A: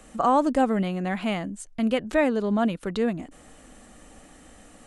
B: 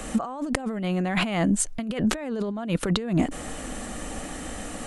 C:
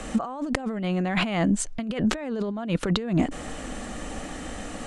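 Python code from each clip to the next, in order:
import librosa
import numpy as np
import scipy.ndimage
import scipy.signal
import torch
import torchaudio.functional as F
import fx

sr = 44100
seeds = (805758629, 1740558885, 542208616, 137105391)

y1 = fx.over_compress(x, sr, threshold_db=-34.0, ratio=-1.0)
y1 = y1 * 10.0 ** (7.0 / 20.0)
y2 = scipy.signal.sosfilt(scipy.signal.butter(2, 7100.0, 'lowpass', fs=sr, output='sos'), y1)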